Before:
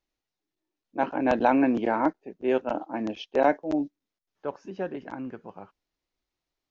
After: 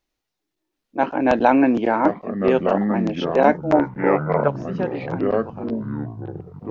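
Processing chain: ever faster or slower copies 729 ms, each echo -5 st, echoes 3, each echo -6 dB; 3.71–4.48 s: high-order bell 1.1 kHz +11.5 dB 2.6 oct; trim +6 dB

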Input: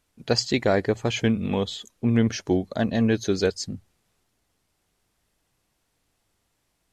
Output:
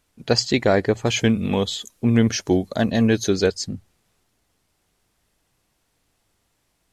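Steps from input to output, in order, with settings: 1.06–3.30 s: treble shelf 6.1 kHz +9.5 dB; trim +3.5 dB

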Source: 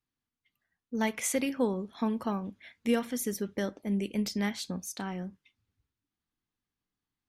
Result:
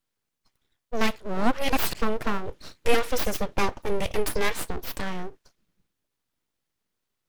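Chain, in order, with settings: 2.46–4.60 s: comb 3.3 ms, depth 85%; full-wave rectifier; 1.16–1.95 s: reverse; trim +8.5 dB

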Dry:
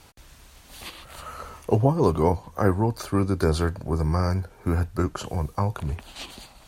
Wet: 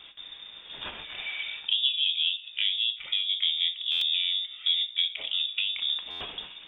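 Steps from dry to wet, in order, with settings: low-pass that closes with the level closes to 1.5 kHz, closed at -19.5 dBFS; hum notches 50/100/150 Hz; low-pass that closes with the level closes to 2.5 kHz, closed at -21 dBFS; peaking EQ 240 Hz +9.5 dB 0.35 oct; compression 2.5:1, threshold -33 dBFS, peak gain reduction 14 dB; distance through air 240 m; gated-style reverb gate 150 ms falling, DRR 7.5 dB; frequency inversion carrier 3.6 kHz; buffer glitch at 3.91/6.10 s, samples 512, times 8; trim +4 dB

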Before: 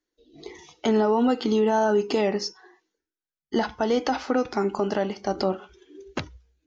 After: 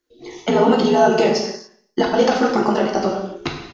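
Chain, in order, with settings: granular stretch 0.56×, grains 28 ms; on a send: feedback delay 117 ms, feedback 44%, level -23.5 dB; on the sum: gated-style reverb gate 310 ms falling, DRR -0.5 dB; trim +6.5 dB

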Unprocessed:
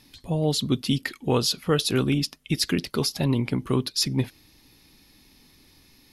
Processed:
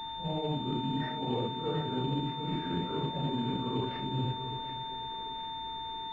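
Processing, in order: phase randomisation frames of 200 ms; low-pass that closes with the level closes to 700 Hz, closed at -18 dBFS; reverse; compression 4:1, threshold -37 dBFS, peak gain reduction 16.5 dB; reverse; whistle 900 Hz -42 dBFS; in parallel at -5 dB: companded quantiser 4-bit; on the sum: two-band feedback delay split 400 Hz, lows 256 ms, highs 737 ms, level -10 dB; class-D stage that switches slowly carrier 3.6 kHz

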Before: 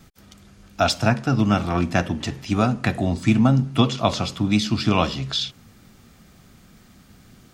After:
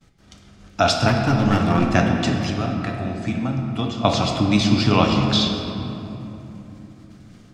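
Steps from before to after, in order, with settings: low-pass 8.2 kHz 12 dB/octave; expander -42 dBFS; in parallel at 0 dB: compression, threshold -31 dBFS, peak gain reduction 18 dB; 1.08–1.92 s: on the sum: hard clipper -14 dBFS, distortion -18 dB; 2.50–4.05 s: feedback comb 99 Hz, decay 1.5 s, harmonics all, mix 70%; simulated room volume 170 m³, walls hard, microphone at 0.36 m

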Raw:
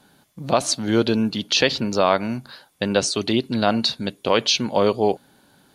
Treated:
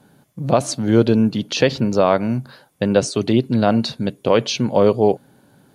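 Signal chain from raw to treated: graphic EQ 125/250/500/4000 Hz +10/+3/+5/-5 dB; trim -1 dB

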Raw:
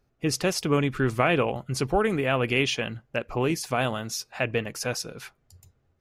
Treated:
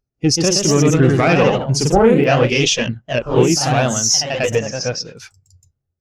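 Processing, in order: single-diode clipper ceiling -21 dBFS; peaking EQ 5.8 kHz +11 dB 1.1 oct; ever faster or slower copies 146 ms, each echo +1 st, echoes 3; 4.55–5.15 s: distance through air 130 m; clicks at 0.71/2.24 s, -12 dBFS; loudness maximiser +12.5 dB; spectral contrast expander 1.5:1

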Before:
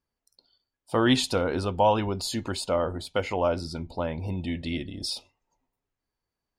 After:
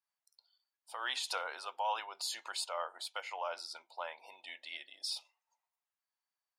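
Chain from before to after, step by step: high-pass 770 Hz 24 dB/octave; peak limiter -20.5 dBFS, peak gain reduction 7 dB; random flutter of the level, depth 60%; trim -2.5 dB

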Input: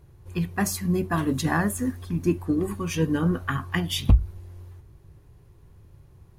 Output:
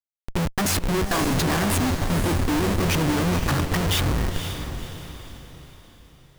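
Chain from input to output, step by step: 0.78–1.28 s: frequency weighting A; Schmitt trigger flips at -33 dBFS; echo that smears into a reverb 515 ms, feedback 43%, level -8 dB; trim +4.5 dB

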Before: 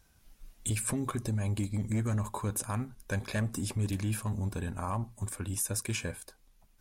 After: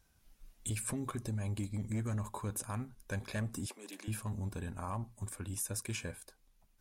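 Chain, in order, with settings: 3.66–4.08 s: Bessel high-pass 450 Hz, order 8; trim -5.5 dB

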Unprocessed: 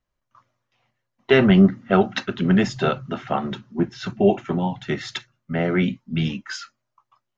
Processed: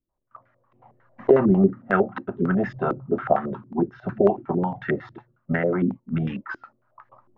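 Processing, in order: recorder AGC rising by 23 dB/s; step-sequenced low-pass 11 Hz 330–1700 Hz; trim -6.5 dB

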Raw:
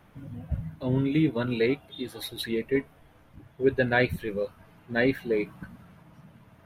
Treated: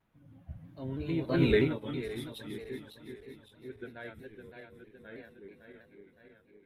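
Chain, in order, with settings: backward echo that repeats 267 ms, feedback 80%, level -4 dB; Doppler pass-by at 1.49 s, 17 m/s, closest 1.4 m; in parallel at +1 dB: compression, threshold -41 dBFS, peak gain reduction 18 dB; on the sum: vibrato with a chosen wave saw down 3.1 Hz, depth 100 cents

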